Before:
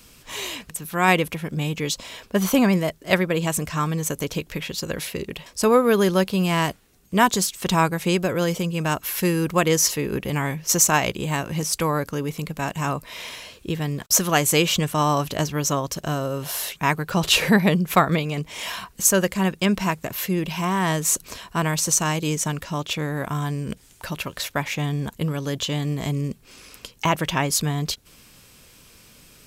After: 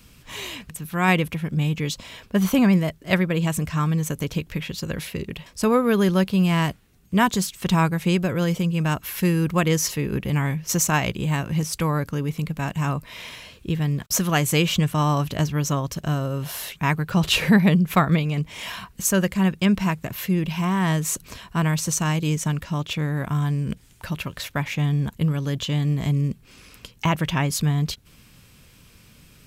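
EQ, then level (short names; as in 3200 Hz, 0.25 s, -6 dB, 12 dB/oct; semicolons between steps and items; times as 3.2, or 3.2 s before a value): tone controls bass +15 dB, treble -9 dB; tilt +2 dB/oct; -3.0 dB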